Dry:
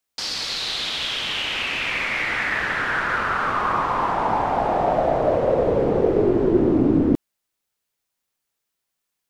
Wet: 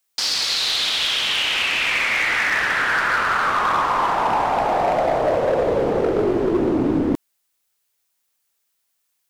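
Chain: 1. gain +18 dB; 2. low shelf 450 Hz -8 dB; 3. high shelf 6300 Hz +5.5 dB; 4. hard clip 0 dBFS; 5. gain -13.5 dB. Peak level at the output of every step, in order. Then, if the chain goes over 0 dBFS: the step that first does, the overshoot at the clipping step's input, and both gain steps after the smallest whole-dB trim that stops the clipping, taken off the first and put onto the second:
+11.5, +8.0, +8.0, 0.0, -13.5 dBFS; step 1, 8.0 dB; step 1 +10 dB, step 5 -5.5 dB

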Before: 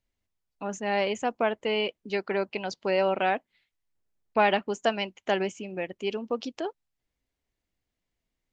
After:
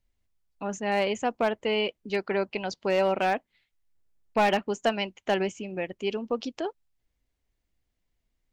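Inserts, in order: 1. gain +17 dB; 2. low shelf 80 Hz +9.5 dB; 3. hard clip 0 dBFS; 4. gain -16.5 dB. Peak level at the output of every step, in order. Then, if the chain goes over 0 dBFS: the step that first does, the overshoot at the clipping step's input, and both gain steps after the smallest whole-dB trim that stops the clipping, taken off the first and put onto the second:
+8.0, +7.5, 0.0, -16.5 dBFS; step 1, 7.5 dB; step 1 +9 dB, step 4 -8.5 dB

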